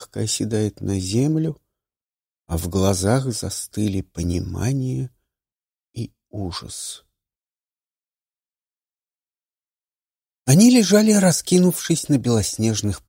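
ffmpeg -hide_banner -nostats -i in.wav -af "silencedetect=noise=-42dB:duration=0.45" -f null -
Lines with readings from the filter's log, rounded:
silence_start: 1.56
silence_end: 2.49 | silence_duration: 0.93
silence_start: 5.08
silence_end: 5.96 | silence_duration: 0.89
silence_start: 6.99
silence_end: 10.47 | silence_duration: 3.48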